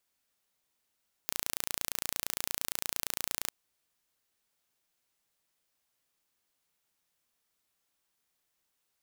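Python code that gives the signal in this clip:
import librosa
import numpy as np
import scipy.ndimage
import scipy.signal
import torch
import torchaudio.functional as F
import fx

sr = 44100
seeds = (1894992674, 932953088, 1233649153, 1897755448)

y = 10.0 ** (-5.0 / 20.0) * (np.mod(np.arange(round(2.21 * sr)), round(sr / 28.7)) == 0)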